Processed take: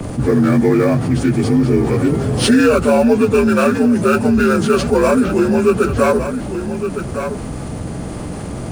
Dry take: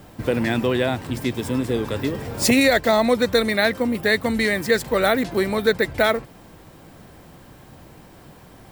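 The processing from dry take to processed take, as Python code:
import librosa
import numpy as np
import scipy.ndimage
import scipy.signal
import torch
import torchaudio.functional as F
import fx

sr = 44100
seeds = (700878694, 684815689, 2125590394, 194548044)

p1 = fx.partial_stretch(x, sr, pct=84)
p2 = fx.sample_hold(p1, sr, seeds[0], rate_hz=5300.0, jitter_pct=20)
p3 = p1 + (p2 * librosa.db_to_amplitude(-11.0))
p4 = fx.low_shelf(p3, sr, hz=370.0, db=10.0)
p5 = fx.hum_notches(p4, sr, base_hz=50, count=4)
p6 = p5 + fx.echo_single(p5, sr, ms=1162, db=-17.0, dry=0)
p7 = fx.env_flatten(p6, sr, amount_pct=50)
y = p7 * librosa.db_to_amplitude(-1.5)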